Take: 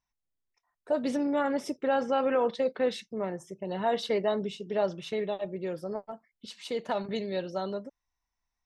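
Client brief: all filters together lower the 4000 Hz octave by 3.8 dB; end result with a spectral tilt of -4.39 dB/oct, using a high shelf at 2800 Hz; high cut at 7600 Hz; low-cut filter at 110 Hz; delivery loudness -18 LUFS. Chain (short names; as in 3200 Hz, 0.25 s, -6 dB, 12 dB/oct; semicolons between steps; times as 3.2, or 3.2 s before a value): HPF 110 Hz; LPF 7600 Hz; high shelf 2800 Hz +4.5 dB; bell 4000 Hz -8 dB; gain +13 dB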